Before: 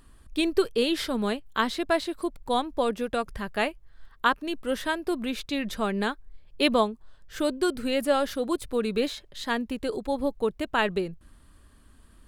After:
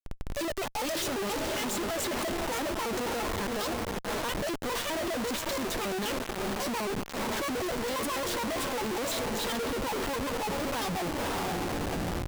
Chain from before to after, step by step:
pitch shifter gated in a rhythm +11 semitones, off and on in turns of 68 ms
dynamic equaliser 1,700 Hz, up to −6 dB, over −39 dBFS, Q 1.3
brickwall limiter −19 dBFS, peak gain reduction 10.5 dB
feedback delay with all-pass diffusion 548 ms, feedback 46%, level −10 dB
comparator with hysteresis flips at −45 dBFS

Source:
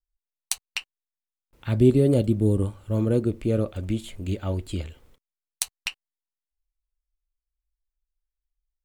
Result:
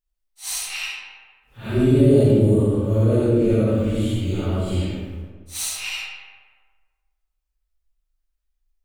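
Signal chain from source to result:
random phases in long frames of 200 ms
comb and all-pass reverb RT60 1.5 s, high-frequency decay 0.55×, pre-delay 20 ms, DRR −3.5 dB
in parallel at +2 dB: brickwall limiter −13 dBFS, peak gain reduction 11 dB
on the sum: level −5 dB

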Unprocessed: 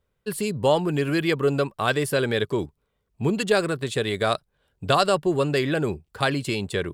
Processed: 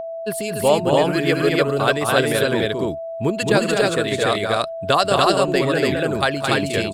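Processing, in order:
loudspeakers that aren't time-aligned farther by 74 metres −3 dB, 86 metres −12 dB, 99 metres 0 dB
steady tone 660 Hz −24 dBFS
harmonic and percussive parts rebalanced percussive +7 dB
level −3 dB

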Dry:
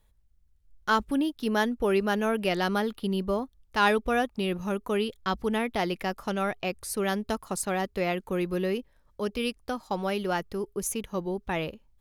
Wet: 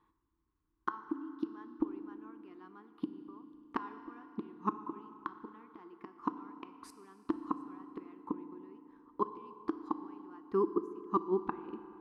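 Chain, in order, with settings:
gate with flip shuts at −22 dBFS, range −31 dB
pair of resonant band-passes 590 Hz, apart 1.7 octaves
feedback delay network reverb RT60 2.9 s, high-frequency decay 0.75×, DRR 9.5 dB
level +14.5 dB

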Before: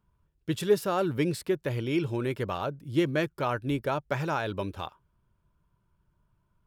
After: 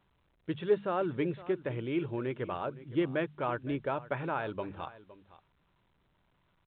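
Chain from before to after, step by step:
Bessel low-pass filter 2,300 Hz
low-shelf EQ 140 Hz −6.5 dB
mains-hum notches 50/100/150/200 Hz
on a send: single-tap delay 513 ms −17.5 dB
on the sum: level −3 dB
A-law companding 64 kbit/s 8,000 Hz

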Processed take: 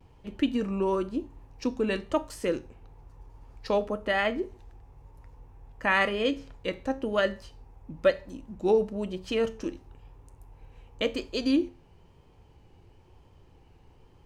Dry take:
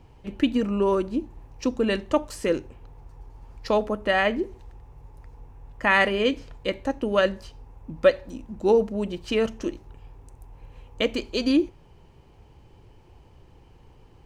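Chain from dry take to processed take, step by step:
tuned comb filter 90 Hz, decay 0.33 s, harmonics all, mix 50%
pitch vibrato 1 Hz 59 cents

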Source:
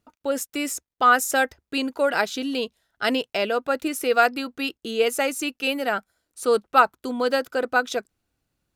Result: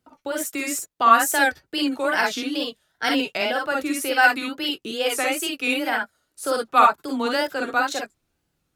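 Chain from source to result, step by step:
frequency shifter +14 Hz
convolution reverb, pre-delay 39 ms, DRR 0.5 dB
tape wow and flutter 140 cents
dynamic equaliser 470 Hz, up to −6 dB, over −33 dBFS, Q 1.4

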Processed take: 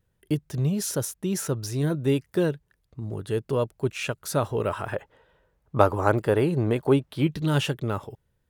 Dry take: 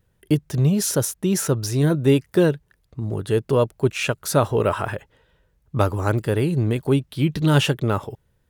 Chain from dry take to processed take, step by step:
0:04.92–0:07.27: parametric band 780 Hz +10.5 dB 2.8 octaves
level −6.5 dB

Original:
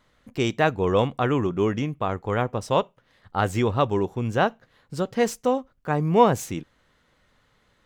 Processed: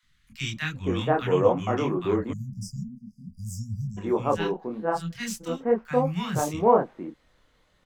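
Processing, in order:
0:04.34–0:05.09: phases set to zero 167 Hz
multi-voice chorus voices 6, 0.85 Hz, delay 25 ms, depth 3.5 ms
three-band delay without the direct sound highs, lows, mids 30/480 ms, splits 200/1,500 Hz
0:02.33–0:03.98: time-frequency box erased 240–4,700 Hz
level +2.5 dB

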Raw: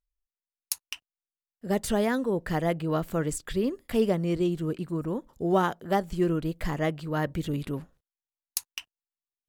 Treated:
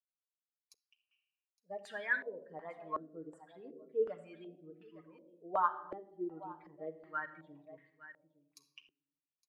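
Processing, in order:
spectral dynamics exaggerated over time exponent 2
high-pass filter 250 Hz 6 dB per octave
first difference
single-tap delay 863 ms −16.5 dB
on a send at −4 dB: convolution reverb RT60 1.0 s, pre-delay 7 ms
on the sum: low-pass on a step sequencer 2.7 Hz 370–1,700 Hz
level +5.5 dB

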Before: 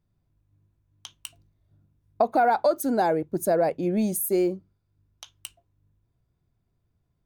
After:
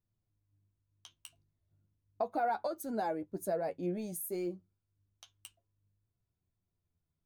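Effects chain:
flanger 0.35 Hz, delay 9 ms, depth 3.2 ms, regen +33%
level −8.5 dB

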